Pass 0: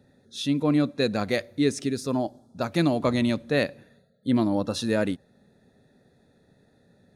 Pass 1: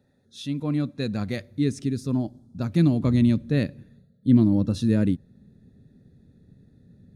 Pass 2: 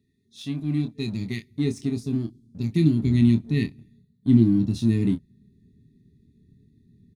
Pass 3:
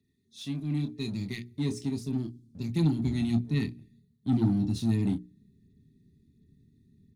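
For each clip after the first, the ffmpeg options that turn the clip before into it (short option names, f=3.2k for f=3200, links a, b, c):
-af "asubboost=boost=10:cutoff=240,volume=-6.5dB"
-filter_complex "[0:a]afftfilt=real='re*(1-between(b*sr/4096,440,1800))':imag='im*(1-between(b*sr/4096,440,1800))':win_size=4096:overlap=0.75,asplit=2[a][b];[b]aeval=exprs='sgn(val(0))*max(abs(val(0))-0.0126,0)':c=same,volume=-4.5dB[c];[a][c]amix=inputs=2:normalize=0,asplit=2[d][e];[e]adelay=26,volume=-7.5dB[f];[d][f]amix=inputs=2:normalize=0,volume=-4dB"
-filter_complex "[0:a]bandreject=f=60:t=h:w=6,bandreject=f=120:t=h:w=6,bandreject=f=180:t=h:w=6,bandreject=f=240:t=h:w=6,bandreject=f=300:t=h:w=6,bandreject=f=360:t=h:w=6,bandreject=f=420:t=h:w=6,acrossover=split=200|3300[a][b][c];[b]asoftclip=type=tanh:threshold=-23.5dB[d];[c]aphaser=in_gain=1:out_gain=1:delay=3.4:decay=0.66:speed=1.4:type=sinusoidal[e];[a][d][e]amix=inputs=3:normalize=0,volume=-3.5dB"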